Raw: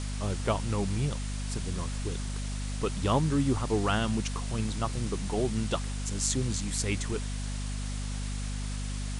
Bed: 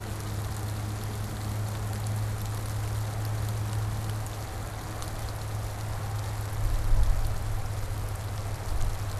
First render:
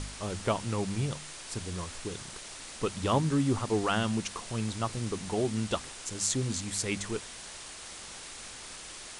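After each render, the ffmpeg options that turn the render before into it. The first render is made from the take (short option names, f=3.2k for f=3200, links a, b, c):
-af "bandreject=f=50:t=h:w=4,bandreject=f=100:t=h:w=4,bandreject=f=150:t=h:w=4,bandreject=f=200:t=h:w=4,bandreject=f=250:t=h:w=4"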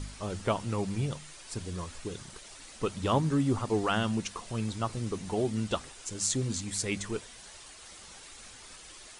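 -af "afftdn=nr=8:nf=-45"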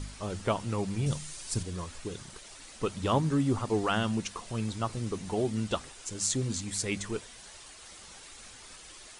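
-filter_complex "[0:a]asettb=1/sr,asplit=3[a][b][c];[a]atrim=end=1.064[d];[b]atrim=start=1.06:end=1.63,asetpts=PTS-STARTPTS,afade=t=in:d=0.004:c=qsin,afade=t=out:st=0.566:d=0.004:c=qsin,bass=f=250:g=7,treble=f=4k:g=8[e];[c]atrim=start=1.626[f];[d][e]acrossfade=d=0.004:c1=hsin:c2=qsin[g];[g][f]acrossfade=d=0.004:c1=qsin:c2=hsin"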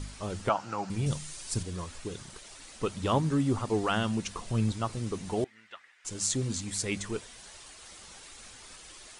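-filter_complex "[0:a]asettb=1/sr,asplit=3[a][b][c];[a]atrim=end=0.494[d];[b]atrim=start=0.49:end=0.9,asetpts=PTS-STARTPTS,afade=t=in:d=0.004:c=qsin,afade=t=out:st=0.406:d=0.004:c=qsin,highpass=220,equalizer=f=240:t=q:w=4:g=-7,equalizer=f=420:t=q:w=4:g=-9,equalizer=f=800:t=q:w=4:g=8,equalizer=f=1.4k:t=q:w=4:g=10,equalizer=f=2k:t=q:w=4:g=-4,equalizer=f=3.5k:t=q:w=4:g=-8,lowpass=f=6.8k:w=0.5412,lowpass=f=6.8k:w=1.3066[e];[c]atrim=start=0.896[f];[d][e]acrossfade=d=0.004:c1=hsin:c2=qsin[g];[g][f]acrossfade=d=0.004:c1=qsin:c2=hsin,asettb=1/sr,asplit=3[h][i][j];[h]atrim=end=4.274[k];[i]atrim=start=4.27:end=4.72,asetpts=PTS-STARTPTS,afade=t=in:d=0.004:c=qsin,afade=t=out:st=0.446:d=0.004:c=qsin,lowshelf=f=240:g=8[l];[j]atrim=start=4.716[m];[k][l]acrossfade=d=0.004:c1=hsin:c2=qsin[n];[n][m]acrossfade=d=0.004:c1=qsin:c2=hsin,asettb=1/sr,asplit=3[o][p][q];[o]atrim=end=5.444[r];[p]atrim=start=5.44:end=6.05,asetpts=PTS-STARTPTS,afade=t=in:d=0.004:c=qsin,afade=t=out:st=0.606:d=0.004:c=qsin,bandpass=f=1.9k:t=q:w=4.4[s];[q]atrim=start=6.046[t];[r][s]acrossfade=d=0.004:c1=hsin:c2=qsin[u];[u][t]acrossfade=d=0.004:c1=qsin:c2=hsin"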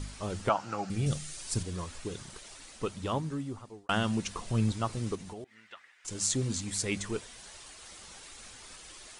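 -filter_complex "[0:a]asettb=1/sr,asplit=3[a][b][c];[a]atrim=end=0.754[d];[b]atrim=start=0.75:end=1.38,asetpts=PTS-STARTPTS,afade=t=in:d=0.004:c=qsin,afade=t=out:st=0.626:d=0.004:c=qsin,asuperstop=centerf=970:order=4:qfactor=4.4[e];[c]atrim=start=1.376[f];[d][e]acrossfade=d=0.004:c1=hsin:c2=qsin[g];[g][f]acrossfade=d=0.004:c1=qsin:c2=hsin,asettb=1/sr,asplit=3[h][i][j];[h]atrim=end=5.154[k];[i]atrim=start=5.15:end=6.08,asetpts=PTS-STARTPTS,afade=t=in:d=0.004:c=qsin,afade=t=out:st=0.926:d=0.004:c=qsin,acompressor=threshold=-41dB:ratio=5:attack=3.2:release=140:knee=1:detection=peak[l];[j]atrim=start=6.076[m];[k][l]acrossfade=d=0.004:c1=hsin:c2=qsin[n];[n][m]acrossfade=d=0.004:c1=qsin:c2=hsin,asplit=2[o][p];[o]atrim=end=3.89,asetpts=PTS-STARTPTS,afade=t=out:st=2.49:d=1.4[q];[p]atrim=start=3.89,asetpts=PTS-STARTPTS,afade=t=in:d=0.004:c=hsin[r];[q][r]concat=n=2:v=0:a=1"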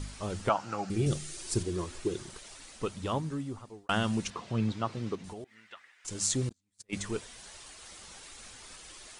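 -filter_complex "[0:a]asettb=1/sr,asplit=3[a][b][c];[a]atrim=end=0.904[d];[b]atrim=start=0.9:end=2.31,asetpts=PTS-STARTPTS,afade=t=in:d=0.004:c=qsin,afade=t=out:st=1.406:d=0.004:c=qsin,equalizer=f=360:w=4.2:g=14.5[e];[c]atrim=start=2.306[f];[d][e]acrossfade=d=0.004:c1=hsin:c2=qsin[g];[g][f]acrossfade=d=0.004:c1=qsin:c2=hsin,asettb=1/sr,asplit=3[h][i][j];[h]atrim=end=4.304[k];[i]atrim=start=4.3:end=5.24,asetpts=PTS-STARTPTS,afade=t=in:d=0.004:c=qsin,afade=t=out:st=0.936:d=0.004:c=qsin,highpass=120,lowpass=4.2k[l];[j]atrim=start=5.236[m];[k][l]acrossfade=d=0.004:c1=hsin:c2=qsin[n];[n][m]acrossfade=d=0.004:c1=qsin:c2=hsin,asettb=1/sr,asplit=3[o][p][q];[o]atrim=end=6.494[r];[p]atrim=start=6.49:end=6.93,asetpts=PTS-STARTPTS,afade=t=in:d=0.004:c=qsin,afade=t=out:st=0.436:d=0.004:c=qsin,agate=range=-44dB:threshold=-29dB:ratio=16:release=100:detection=peak[s];[q]atrim=start=6.926[t];[r][s]acrossfade=d=0.004:c1=hsin:c2=qsin[u];[u][t]acrossfade=d=0.004:c1=qsin:c2=hsin"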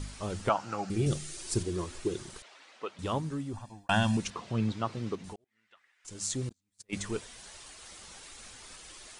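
-filter_complex "[0:a]asettb=1/sr,asplit=3[a][b][c];[a]atrim=end=2.424[d];[b]atrim=start=2.42:end=2.99,asetpts=PTS-STARTPTS,afade=t=in:d=0.004:c=qsin,afade=t=out:st=0.566:d=0.004:c=qsin,highpass=500,lowpass=3.2k[e];[c]atrim=start=2.986[f];[d][e]acrossfade=d=0.004:c1=hsin:c2=qsin[g];[g][f]acrossfade=d=0.004:c1=qsin:c2=hsin,asettb=1/sr,asplit=3[h][i][j];[h]atrim=end=3.534[k];[i]atrim=start=3.53:end=4.17,asetpts=PTS-STARTPTS,afade=t=in:d=0.004:c=qsin,afade=t=out:st=0.636:d=0.004:c=qsin,aecho=1:1:1.2:0.91,atrim=end_sample=28224[l];[j]atrim=start=4.166[m];[k][l]acrossfade=d=0.004:c1=hsin:c2=qsin[n];[n][m]acrossfade=d=0.004:c1=qsin:c2=hsin,asplit=2[o][p];[o]atrim=end=5.36,asetpts=PTS-STARTPTS,afade=t=out:st=5.356:d=0.004:c=hsin[q];[p]atrim=start=5.36,asetpts=PTS-STARTPTS,afade=t=in:d=1.55[r];[q][r]concat=n=2:v=0:a=1"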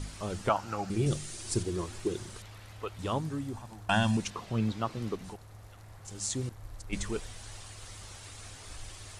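-filter_complex "[1:a]volume=-17.5dB[a];[0:a][a]amix=inputs=2:normalize=0"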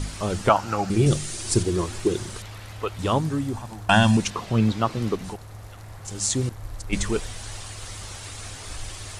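-af "volume=9.5dB"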